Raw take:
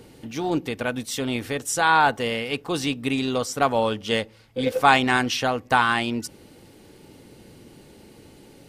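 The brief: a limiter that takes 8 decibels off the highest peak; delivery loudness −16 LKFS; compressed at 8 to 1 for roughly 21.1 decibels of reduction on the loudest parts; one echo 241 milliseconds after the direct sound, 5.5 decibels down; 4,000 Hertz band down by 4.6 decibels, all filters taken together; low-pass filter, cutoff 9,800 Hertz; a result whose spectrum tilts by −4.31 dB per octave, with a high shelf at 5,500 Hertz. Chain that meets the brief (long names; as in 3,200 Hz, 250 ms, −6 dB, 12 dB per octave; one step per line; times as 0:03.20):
low-pass filter 9,800 Hz
parametric band 4,000 Hz −4 dB
high-shelf EQ 5,500 Hz −6 dB
downward compressor 8 to 1, threshold −34 dBFS
brickwall limiter −29.5 dBFS
single-tap delay 241 ms −5.5 dB
level +24 dB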